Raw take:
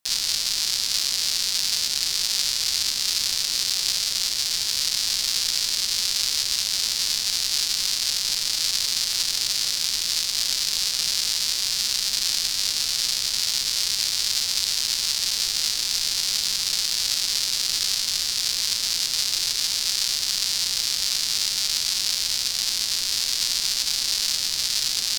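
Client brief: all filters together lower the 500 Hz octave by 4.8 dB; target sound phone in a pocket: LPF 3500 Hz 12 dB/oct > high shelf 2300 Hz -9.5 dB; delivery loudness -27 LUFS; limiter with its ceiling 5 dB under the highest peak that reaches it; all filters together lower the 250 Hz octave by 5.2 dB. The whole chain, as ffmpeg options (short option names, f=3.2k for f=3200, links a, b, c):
-af "equalizer=f=250:t=o:g=-6,equalizer=f=500:t=o:g=-4,alimiter=limit=-8.5dB:level=0:latency=1,lowpass=3.5k,highshelf=f=2.3k:g=-9.5,volume=9dB"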